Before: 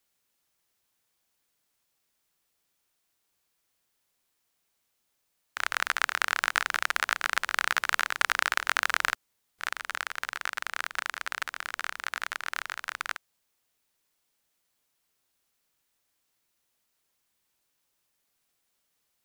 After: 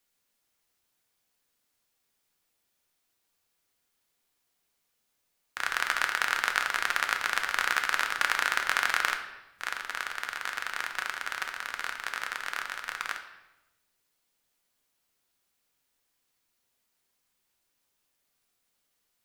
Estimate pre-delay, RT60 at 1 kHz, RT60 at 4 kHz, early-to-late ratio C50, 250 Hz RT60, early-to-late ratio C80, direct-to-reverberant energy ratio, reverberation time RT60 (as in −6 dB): 4 ms, 0.90 s, 0.85 s, 8.5 dB, 1.3 s, 11.0 dB, 4.0 dB, 0.95 s